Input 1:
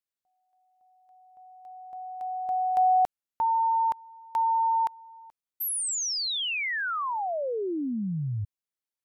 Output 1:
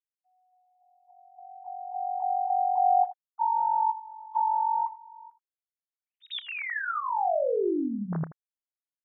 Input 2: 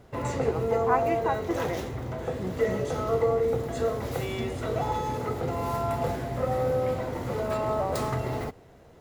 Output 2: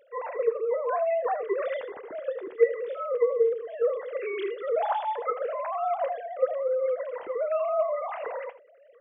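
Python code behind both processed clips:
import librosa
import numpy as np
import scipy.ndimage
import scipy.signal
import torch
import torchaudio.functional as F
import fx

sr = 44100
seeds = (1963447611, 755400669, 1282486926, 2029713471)

p1 = fx.sine_speech(x, sr)
p2 = fx.rider(p1, sr, range_db=4, speed_s=0.5)
p3 = fx.wow_flutter(p2, sr, seeds[0], rate_hz=0.33, depth_cents=19.0)
y = p3 + fx.room_early_taps(p3, sr, ms=(30, 80), db=(-17.5, -15.0), dry=0)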